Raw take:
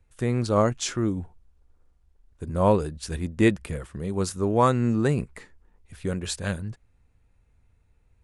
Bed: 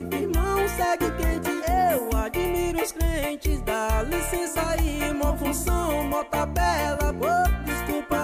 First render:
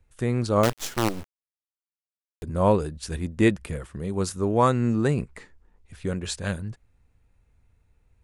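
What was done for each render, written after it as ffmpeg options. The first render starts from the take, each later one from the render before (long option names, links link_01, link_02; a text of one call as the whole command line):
ffmpeg -i in.wav -filter_complex "[0:a]asettb=1/sr,asplit=3[link_01][link_02][link_03];[link_01]atrim=end=0.634[link_04];[link_02]atrim=start=0.63:end=2.43,asetpts=PTS-STARTPTS,afade=type=in:duration=0.004:curve=qsin,afade=type=out:start_time=1.796:duration=0.004:curve=qsin,acrusher=bits=4:dc=4:mix=0:aa=0.000001[link_05];[link_03]atrim=start=2.426[link_06];[link_04][link_05]acrossfade=duration=0.004:curve1=hsin:curve2=qsin[link_07];[link_07][link_06]acrossfade=duration=0.004:curve1=qsin:curve2=hsin,asettb=1/sr,asplit=3[link_08][link_09][link_10];[link_08]atrim=end=5.114[link_11];[link_09]atrim=start=5.11:end=6.45,asetpts=PTS-STARTPTS,afade=type=in:duration=0.004:curve=qsin,afade=type=out:start_time=1.336:duration=0.004:curve=qsin,lowpass=9700[link_12];[link_10]atrim=start=6.446[link_13];[link_11][link_12]acrossfade=duration=0.004:curve1=hsin:curve2=qsin[link_14];[link_14][link_13]acrossfade=duration=0.004:curve1=qsin:curve2=hsin" out.wav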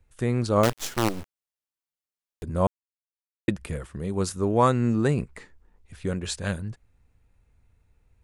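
ffmpeg -i in.wav -filter_complex "[0:a]asplit=3[link_01][link_02][link_03];[link_01]atrim=end=2.67,asetpts=PTS-STARTPTS,afade=type=out:start_time=2.666:duration=0.004:curve=hsin[link_04];[link_02]atrim=start=2.67:end=3.48,asetpts=PTS-STARTPTS,volume=0[link_05];[link_03]atrim=start=3.48,asetpts=PTS-STARTPTS,afade=type=in:duration=0.004:curve=hsin[link_06];[link_04][link_05][link_06]concat=n=3:v=0:a=1" out.wav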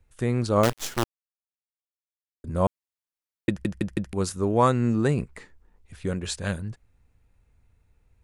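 ffmpeg -i in.wav -filter_complex "[0:a]asplit=7[link_01][link_02][link_03][link_04][link_05][link_06][link_07];[link_01]atrim=end=1.04,asetpts=PTS-STARTPTS,afade=type=out:start_time=1.036:duration=0.004:curve=hsin[link_08];[link_02]atrim=start=1.04:end=2.44,asetpts=PTS-STARTPTS,volume=0[link_09];[link_03]atrim=start=2.44:end=3.652,asetpts=PTS-STARTPTS,afade=type=in:duration=0.004:curve=hsin[link_10];[link_04]atrim=start=3.488:end=3.652[link_11];[link_05]atrim=start=3.488:end=3.652[link_12];[link_06]atrim=start=3.488:end=3.652[link_13];[link_07]atrim=start=4.128[link_14];[link_08][link_09][link_10]concat=n=3:v=0:a=1[link_15];[link_15][link_11]acrossfade=duration=0.004:curve1=hsin:curve2=hsin[link_16];[link_16][link_12]acrossfade=duration=0.004:curve1=hsin:curve2=hsin[link_17];[link_17][link_13]acrossfade=duration=0.004:curve1=hsin:curve2=hsin[link_18];[link_18][link_14]acrossfade=duration=0.004:curve1=hsin:curve2=hsin" out.wav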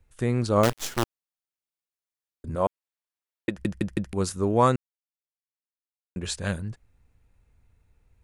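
ffmpeg -i in.wav -filter_complex "[0:a]asettb=1/sr,asplit=3[link_01][link_02][link_03];[link_01]atrim=end=2.554[link_04];[link_02]atrim=start=2.55:end=3.57,asetpts=PTS-STARTPTS,afade=type=in:duration=0.004:curve=qsin,afade=type=out:start_time=1.016:duration=0.004:curve=qsin,bass=frequency=250:gain=-10,treble=frequency=4000:gain=-5[link_05];[link_03]atrim=start=3.566[link_06];[link_04][link_05]acrossfade=duration=0.004:curve1=hsin:curve2=qsin[link_07];[link_07][link_06]acrossfade=duration=0.004:curve1=qsin:curve2=hsin,asplit=3[link_08][link_09][link_10];[link_08]atrim=end=4.76,asetpts=PTS-STARTPTS,afade=type=out:start_time=4.756:duration=0.004:curve=hsin[link_11];[link_09]atrim=start=4.76:end=6.16,asetpts=PTS-STARTPTS,volume=0[link_12];[link_10]atrim=start=6.16,asetpts=PTS-STARTPTS,afade=type=in:duration=0.004:curve=hsin[link_13];[link_11][link_12][link_13]concat=n=3:v=0:a=1" out.wav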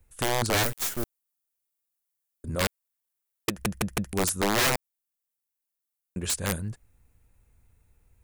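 ffmpeg -i in.wav -filter_complex "[0:a]acrossover=split=6100[link_01][link_02];[link_02]crystalizer=i=2:c=0[link_03];[link_01][link_03]amix=inputs=2:normalize=0,aeval=exprs='(mod(7.5*val(0)+1,2)-1)/7.5':channel_layout=same" out.wav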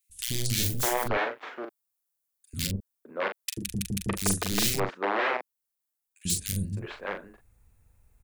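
ffmpeg -i in.wav -filter_complex "[0:a]asplit=2[link_01][link_02];[link_02]adelay=41,volume=-6.5dB[link_03];[link_01][link_03]amix=inputs=2:normalize=0,acrossover=split=310|2600[link_04][link_05][link_06];[link_04]adelay=90[link_07];[link_05]adelay=610[link_08];[link_07][link_08][link_06]amix=inputs=3:normalize=0" out.wav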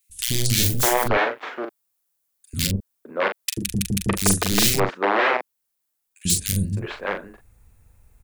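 ffmpeg -i in.wav -af "volume=7.5dB" out.wav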